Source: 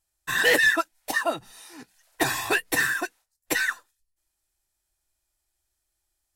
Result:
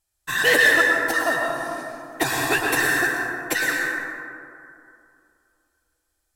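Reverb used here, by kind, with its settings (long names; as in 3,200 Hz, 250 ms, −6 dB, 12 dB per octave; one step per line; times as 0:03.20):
dense smooth reverb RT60 2.6 s, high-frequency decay 0.35×, pre-delay 95 ms, DRR −1 dB
level +1 dB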